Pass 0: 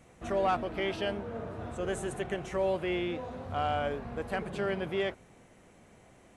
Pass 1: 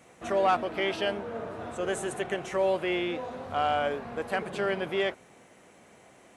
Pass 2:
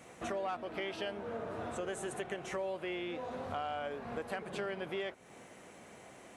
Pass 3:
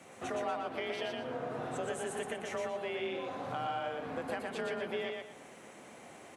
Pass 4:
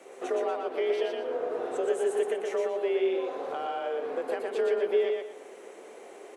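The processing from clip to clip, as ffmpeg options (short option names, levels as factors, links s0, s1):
-af "highpass=f=330:p=1,volume=1.78"
-af "acompressor=threshold=0.0112:ratio=4,volume=1.19"
-af "aecho=1:1:119|238|357|476:0.708|0.205|0.0595|0.0173,afreqshift=31"
-af "highpass=f=410:t=q:w=4.9"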